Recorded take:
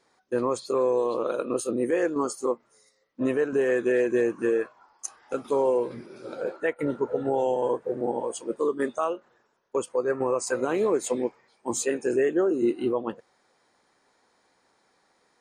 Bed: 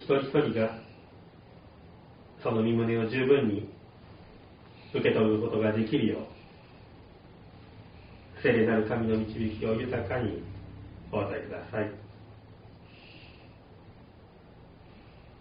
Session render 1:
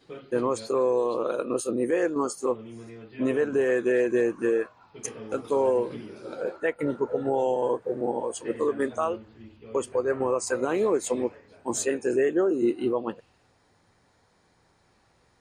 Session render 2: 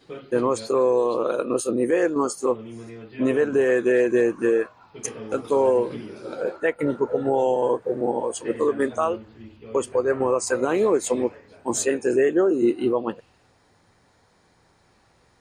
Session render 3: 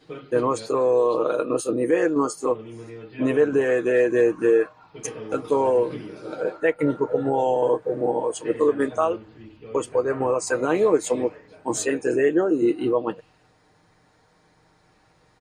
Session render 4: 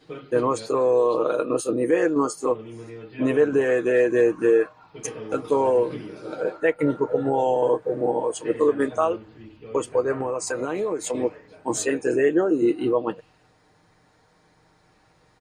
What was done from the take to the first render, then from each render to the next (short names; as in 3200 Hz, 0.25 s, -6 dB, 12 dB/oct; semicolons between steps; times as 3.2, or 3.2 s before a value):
add bed -16 dB
gain +4 dB
high shelf 5600 Hz -4.5 dB; comb 6.5 ms, depth 45%
10.18–11.15 compressor, threshold -22 dBFS